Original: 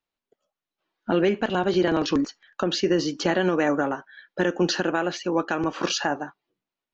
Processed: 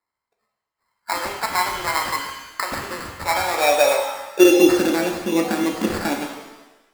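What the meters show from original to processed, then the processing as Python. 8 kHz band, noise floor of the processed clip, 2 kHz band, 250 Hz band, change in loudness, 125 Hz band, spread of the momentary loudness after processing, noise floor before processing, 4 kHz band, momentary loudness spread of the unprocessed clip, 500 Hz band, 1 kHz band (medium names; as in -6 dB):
no reading, -84 dBFS, +4.5 dB, +3.5 dB, +4.5 dB, -4.5 dB, 14 LU, under -85 dBFS, +3.0 dB, 9 LU, +4.5 dB, +6.5 dB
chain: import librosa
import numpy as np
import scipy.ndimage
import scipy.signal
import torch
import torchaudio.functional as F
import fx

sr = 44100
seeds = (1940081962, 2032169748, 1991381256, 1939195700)

y = fx.filter_sweep_highpass(x, sr, from_hz=1000.0, to_hz=220.0, start_s=3.22, end_s=5.01, q=6.9)
y = fx.sample_hold(y, sr, seeds[0], rate_hz=3100.0, jitter_pct=0)
y = fx.rev_shimmer(y, sr, seeds[1], rt60_s=1.0, semitones=7, shimmer_db=-8, drr_db=2.0)
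y = y * librosa.db_to_amplitude(-2.5)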